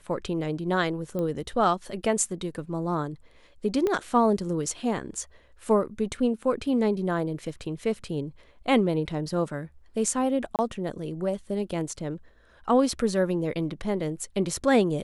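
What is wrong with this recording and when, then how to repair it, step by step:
0:01.19: click −20 dBFS
0:03.87: click −15 dBFS
0:10.56–0:10.59: drop-out 28 ms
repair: click removal
repair the gap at 0:10.56, 28 ms

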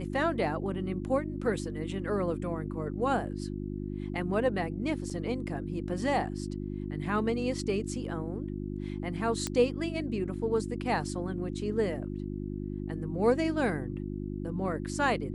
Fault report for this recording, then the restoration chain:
mains hum 50 Hz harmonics 7 −36 dBFS
0:05.10–0:05.11: drop-out 5.3 ms
0:09.47: click −16 dBFS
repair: click removal
hum removal 50 Hz, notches 7
repair the gap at 0:05.10, 5.3 ms

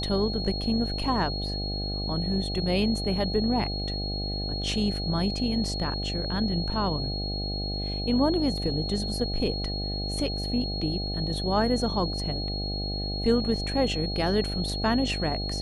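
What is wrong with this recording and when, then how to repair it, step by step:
mains buzz 50 Hz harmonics 16 −32 dBFS
whistle 4,300 Hz −33 dBFS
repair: notch filter 4,300 Hz, Q 30
hum removal 50 Hz, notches 16

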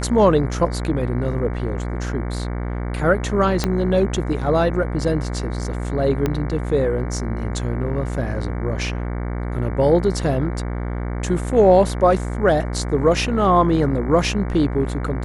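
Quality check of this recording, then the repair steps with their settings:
mains buzz 60 Hz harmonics 38 −25 dBFS
0:03.64: click −5 dBFS
0:06.26: click −8 dBFS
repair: click removal
hum removal 60 Hz, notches 38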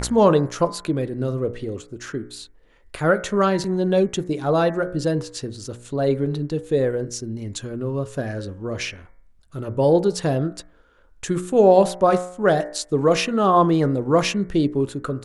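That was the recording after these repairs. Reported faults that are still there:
0:03.64: click
0:06.26: click

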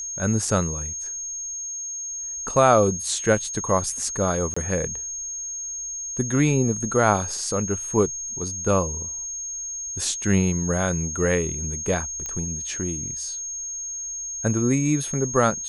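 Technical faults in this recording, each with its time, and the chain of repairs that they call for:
whistle 6,500 Hz −29 dBFS
0:04.54–0:04.57: drop-out 25 ms
0:12.26: click −16 dBFS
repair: click removal
notch filter 6,500 Hz, Q 30
repair the gap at 0:04.54, 25 ms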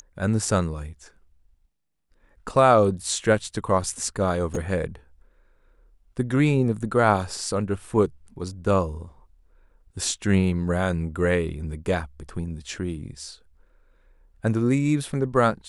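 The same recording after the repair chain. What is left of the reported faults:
none of them is left

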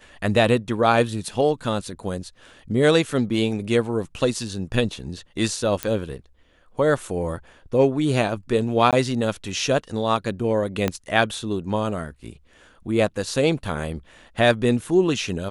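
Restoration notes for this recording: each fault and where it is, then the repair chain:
0:05.83: click −8 dBFS
0:08.91–0:08.93: drop-out 17 ms
0:10.88: click −8 dBFS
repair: click removal
repair the gap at 0:08.91, 17 ms

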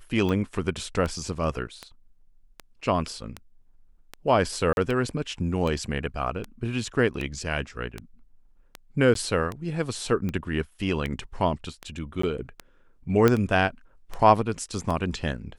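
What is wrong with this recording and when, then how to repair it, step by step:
scratch tick 78 rpm −18 dBFS
0:04.73–0:04.77: drop-out 41 ms
0:09.14–0:09.15: drop-out 13 ms
0:12.22–0:12.23: drop-out 14 ms
0:13.28: click −7 dBFS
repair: click removal
repair the gap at 0:04.73, 41 ms
repair the gap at 0:09.14, 13 ms
repair the gap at 0:12.22, 14 ms

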